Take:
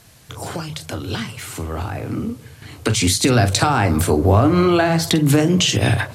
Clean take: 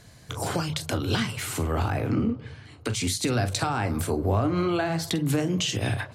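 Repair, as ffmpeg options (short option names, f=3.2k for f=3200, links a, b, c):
-af "agate=range=-21dB:threshold=-30dB,asetnsamples=n=441:p=0,asendcmd='2.62 volume volume -10dB',volume=0dB"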